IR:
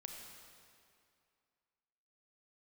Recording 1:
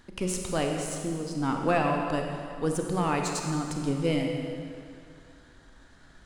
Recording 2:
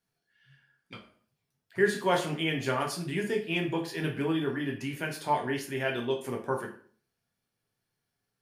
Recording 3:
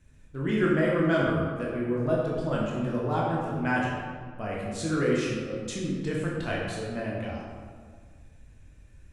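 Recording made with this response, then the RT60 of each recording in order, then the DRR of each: 1; 2.4 s, 0.50 s, 1.8 s; 1.5 dB, 0.5 dB, -5.0 dB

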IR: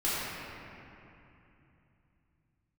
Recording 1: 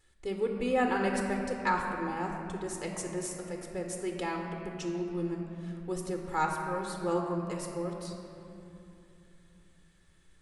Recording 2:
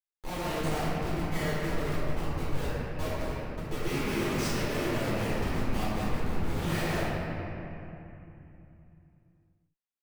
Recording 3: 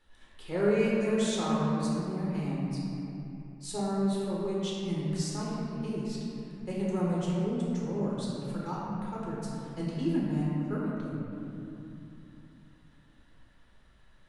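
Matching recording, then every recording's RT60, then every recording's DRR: 2; 2.9 s, 2.9 s, 2.9 s; 1.5 dB, -11.0 dB, -6.0 dB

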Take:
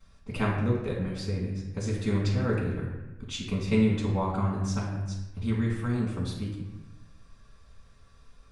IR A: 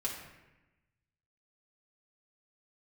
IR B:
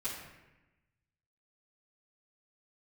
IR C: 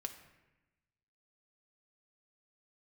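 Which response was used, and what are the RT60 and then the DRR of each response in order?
B; 1.0 s, 1.0 s, 1.0 s; -4.5 dB, -13.5 dB, 5.0 dB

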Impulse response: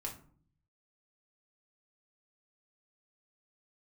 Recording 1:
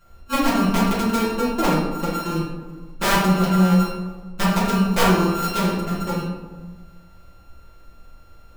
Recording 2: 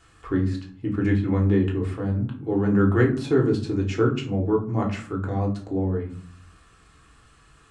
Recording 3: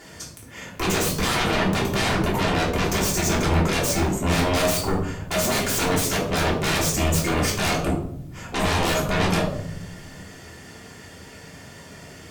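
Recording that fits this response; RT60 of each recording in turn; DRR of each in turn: 2; 1.3 s, 0.50 s, 0.75 s; -8.5 dB, -1.0 dB, -3.5 dB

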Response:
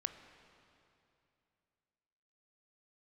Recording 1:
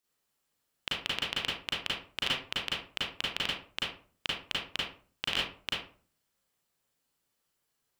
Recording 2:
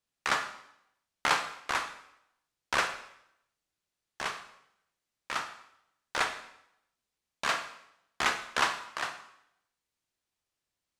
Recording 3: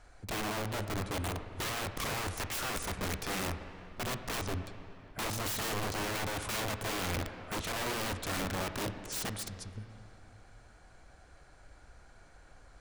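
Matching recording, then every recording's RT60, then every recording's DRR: 3; 0.45 s, 0.75 s, 2.8 s; -6.5 dB, 7.5 dB, 8.5 dB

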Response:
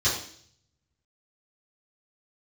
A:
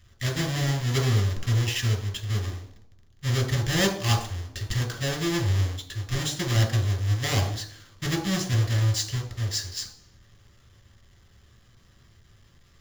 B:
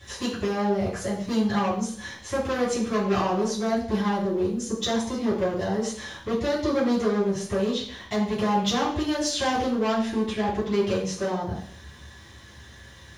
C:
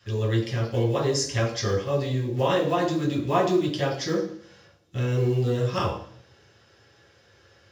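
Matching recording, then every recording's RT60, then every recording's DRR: B; 0.55 s, 0.55 s, 0.55 s; 2.5 dB, -12.5 dB, -3.5 dB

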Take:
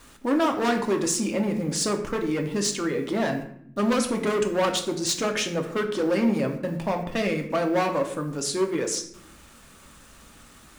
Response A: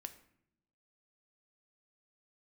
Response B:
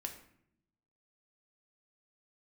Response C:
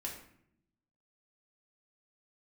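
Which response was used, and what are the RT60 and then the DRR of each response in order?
B; 0.75 s, 0.70 s, 0.70 s; 8.0 dB, 3.0 dB, -2.5 dB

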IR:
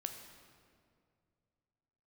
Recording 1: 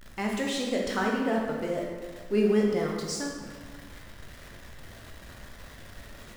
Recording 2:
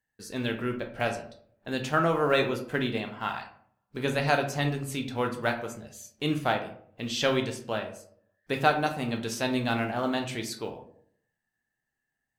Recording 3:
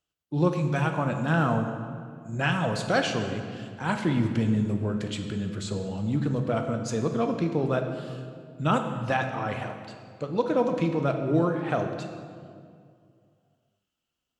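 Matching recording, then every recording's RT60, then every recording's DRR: 3; 1.7 s, 0.60 s, 2.3 s; -1.5 dB, 4.0 dB, 5.0 dB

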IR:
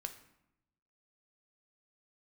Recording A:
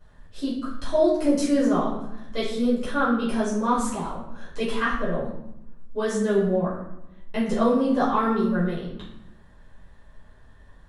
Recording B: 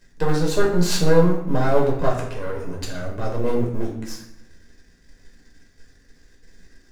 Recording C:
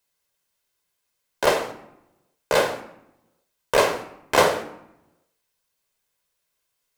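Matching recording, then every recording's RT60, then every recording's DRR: C; 0.80 s, 0.80 s, 0.85 s; -9.0 dB, -3.0 dB, 6.5 dB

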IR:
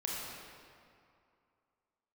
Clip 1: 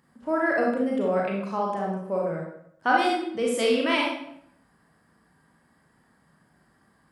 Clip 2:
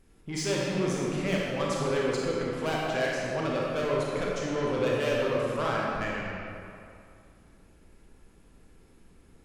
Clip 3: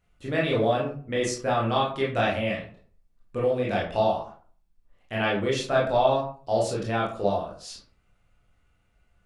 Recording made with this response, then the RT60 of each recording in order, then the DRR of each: 2; 0.70 s, 2.5 s, 0.45 s; -2.5 dB, -4.5 dB, -4.5 dB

